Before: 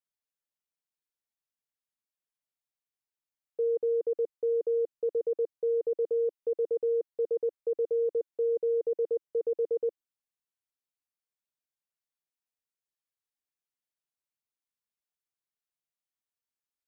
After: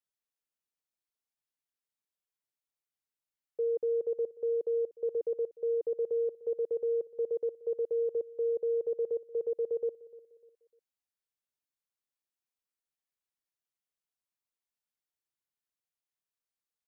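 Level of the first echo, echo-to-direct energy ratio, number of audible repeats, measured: -19.5 dB, -19.0 dB, 2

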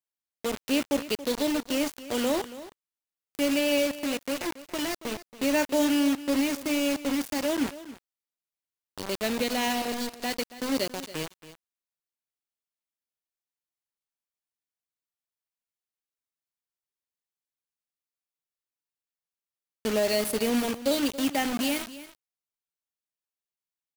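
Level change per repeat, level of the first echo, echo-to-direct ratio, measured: no steady repeat, -15.5 dB, -15.5 dB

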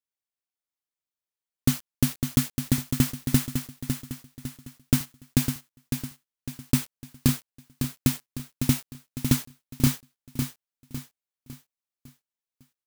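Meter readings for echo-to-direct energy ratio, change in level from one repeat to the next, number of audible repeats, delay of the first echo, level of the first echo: -6.0 dB, -7.5 dB, 4, 0.554 s, -7.0 dB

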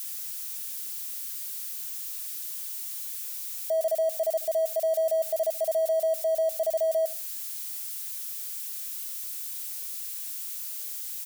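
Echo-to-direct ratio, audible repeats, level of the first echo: -21.0 dB, 2, -21.0 dB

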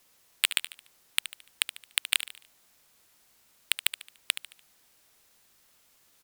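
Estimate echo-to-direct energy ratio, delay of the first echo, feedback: -11.5 dB, 73 ms, 40%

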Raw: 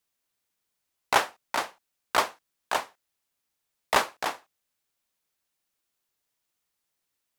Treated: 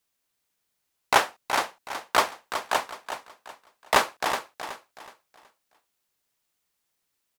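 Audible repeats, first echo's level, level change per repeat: 3, -9.5 dB, -10.0 dB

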